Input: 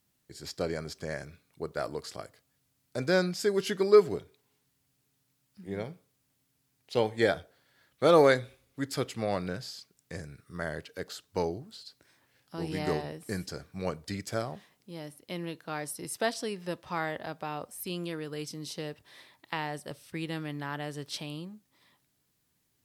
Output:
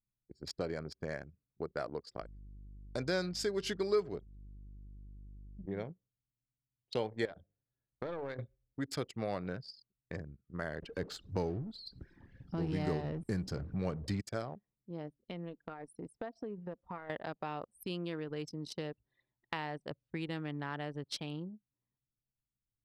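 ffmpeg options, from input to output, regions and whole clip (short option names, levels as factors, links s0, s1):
-filter_complex "[0:a]asettb=1/sr,asplit=3[s0][s1][s2];[s0]atrim=end=2.214[s3];[s1]atrim=start=2.21:end=5.66,asetpts=PTS-STARTPTS,afade=t=in:d=0.004:c=qsin,afade=t=out:st=3.446:d=0.004:c=qsin,equalizer=f=4900:t=o:w=1.6:g=4.5,aeval=exprs='val(0)+0.00398*(sin(2*PI*50*n/s)+sin(2*PI*2*50*n/s)/2+sin(2*PI*3*50*n/s)/3+sin(2*PI*4*50*n/s)/4+sin(2*PI*5*50*n/s)/5)':c=same[s4];[s2]atrim=start=5.656[s5];[s3][s4]acrossfade=d=0.004:c1=hsin:c2=qsin[s6];[s6][s5]acrossfade=d=0.004:c1=qsin:c2=hsin,asettb=1/sr,asplit=3[s7][s8][s9];[s7]atrim=end=7.254[s10];[s8]atrim=start=7.25:end=8.39,asetpts=PTS-STARTPTS,afade=t=in:d=0.004:c=qsin,afade=t=out:st=1.136:d=0.004:c=qsin,aeval=exprs='clip(val(0),-1,0.075)':c=same,bandreject=f=50:t=h:w=6,bandreject=f=100:t=h:w=6,bandreject=f=150:t=h:w=6,bandreject=f=200:t=h:w=6,bandreject=f=250:t=h:w=6,bandreject=f=300:t=h:w=6,acompressor=threshold=0.02:ratio=8:attack=3.2:release=140:knee=1:detection=peak[s11];[s9]atrim=start=8.386[s12];[s10][s11]acrossfade=d=0.004:c1=hsin:c2=qsin[s13];[s13][s12]acrossfade=d=0.004:c1=qsin:c2=hsin,asettb=1/sr,asplit=3[s14][s15][s16];[s14]atrim=end=10.824[s17];[s15]atrim=start=10.82:end=14.21,asetpts=PTS-STARTPTS,afade=t=in:d=0.004:c=qsin,afade=t=out:st=3.386:d=0.004:c=qsin,aeval=exprs='val(0)+0.5*0.0075*sgn(val(0))':c=same,deesser=0.7,lowshelf=f=260:g=10[s18];[s16]atrim=start=14.206[s19];[s17][s18]acrossfade=d=0.004:c1=hsin:c2=qsin[s20];[s20][s19]acrossfade=d=0.004:c1=qsin:c2=hsin,asettb=1/sr,asplit=3[s21][s22][s23];[s21]atrim=end=15.164[s24];[s22]atrim=start=15.16:end=17.1,asetpts=PTS-STARTPTS,afade=t=in:d=0.004:c=qsin,afade=t=out:st=1.936:d=0.004:c=qsin,aecho=1:1:4.3:0.39,atrim=end_sample=85554,acompressor=threshold=0.0141:ratio=5:attack=3.2:release=140:knee=1:detection=peak,adynamicequalizer=threshold=0.00126:dfrequency=2100:dqfactor=0.7:tfrequency=2100:tqfactor=0.7:attack=5:release=100:ratio=0.375:range=2.5:mode=cutabove:tftype=highshelf[s25];[s23]atrim=start=17.096[s26];[s24][s25]acrossfade=d=0.004:c1=hsin:c2=qsin[s27];[s27][s26]acrossfade=d=0.004:c1=qsin:c2=hsin,highshelf=f=12000:g=-10.5,anlmdn=0.631,acompressor=threshold=0.01:ratio=2,volume=1.19"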